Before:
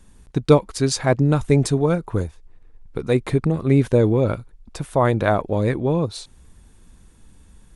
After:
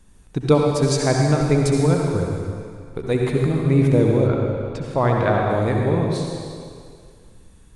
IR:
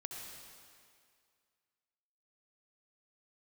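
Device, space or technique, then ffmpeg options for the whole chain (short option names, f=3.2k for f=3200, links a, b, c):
stairwell: -filter_complex "[1:a]atrim=start_sample=2205[a];[0:a][a]afir=irnorm=-1:irlink=0,asettb=1/sr,asplit=3[b][c][d];[b]atrim=end=4.274[e];[c]atrim=start=4.27:end=5.5,asetpts=PTS-STARTPTS,afade=t=in:d=0.004:c=qsin,afade=t=out:st=1.226:d=0.004:c=qsin,lowpass=5.2k[f];[d]atrim=start=5.496[g];[e][f]acrossfade=d=0.004:c1=hsin:c2=qsin[h];[h][g]acrossfade=d=0.004:c1=qsin:c2=hsin,volume=2.5dB"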